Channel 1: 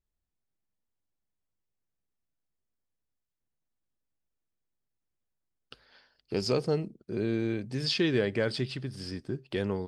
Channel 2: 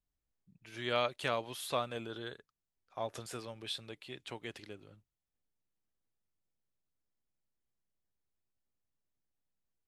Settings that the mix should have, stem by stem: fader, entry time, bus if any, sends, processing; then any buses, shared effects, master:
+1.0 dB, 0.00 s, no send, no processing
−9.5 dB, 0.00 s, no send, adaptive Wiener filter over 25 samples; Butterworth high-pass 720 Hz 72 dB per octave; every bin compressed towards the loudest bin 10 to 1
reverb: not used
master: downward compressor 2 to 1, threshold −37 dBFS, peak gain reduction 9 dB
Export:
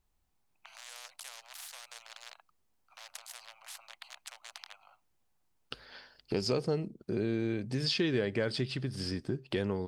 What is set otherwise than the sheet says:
stem 1 +1.0 dB → +8.5 dB
stem 2 −9.5 dB → −1.0 dB

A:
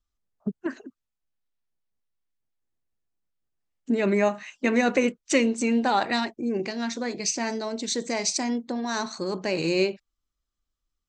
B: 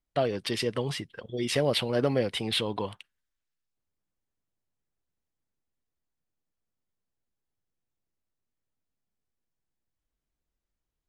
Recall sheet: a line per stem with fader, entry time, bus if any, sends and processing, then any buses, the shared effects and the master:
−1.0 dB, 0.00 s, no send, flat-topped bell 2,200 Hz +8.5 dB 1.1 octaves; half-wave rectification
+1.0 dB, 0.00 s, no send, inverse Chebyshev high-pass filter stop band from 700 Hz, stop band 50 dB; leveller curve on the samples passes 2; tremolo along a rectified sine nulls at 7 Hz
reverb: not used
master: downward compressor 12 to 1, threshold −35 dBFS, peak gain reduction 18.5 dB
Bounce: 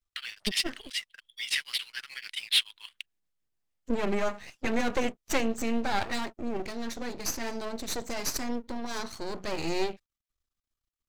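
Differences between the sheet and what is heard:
stem A: missing flat-topped bell 2,200 Hz +8.5 dB 1.1 octaves
master: missing downward compressor 12 to 1, threshold −35 dBFS, peak gain reduction 18.5 dB

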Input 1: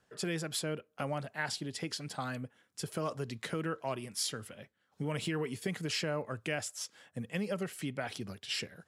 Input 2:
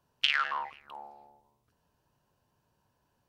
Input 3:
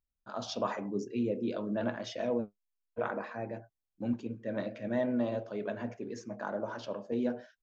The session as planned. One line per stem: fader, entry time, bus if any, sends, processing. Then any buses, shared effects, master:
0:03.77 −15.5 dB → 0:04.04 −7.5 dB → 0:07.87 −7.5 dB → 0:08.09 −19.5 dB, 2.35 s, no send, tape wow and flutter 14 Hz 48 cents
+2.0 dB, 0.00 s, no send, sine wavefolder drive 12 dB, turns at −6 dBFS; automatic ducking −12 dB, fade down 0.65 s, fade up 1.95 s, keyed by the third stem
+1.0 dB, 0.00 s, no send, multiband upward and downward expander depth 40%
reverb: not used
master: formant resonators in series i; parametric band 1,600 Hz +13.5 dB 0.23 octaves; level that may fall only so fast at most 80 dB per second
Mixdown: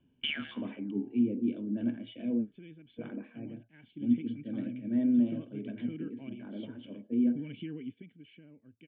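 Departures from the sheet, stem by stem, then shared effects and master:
stem 1 −15.5 dB → −4.5 dB
stem 3 +1.0 dB → +8.5 dB
master: missing level that may fall only so fast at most 80 dB per second

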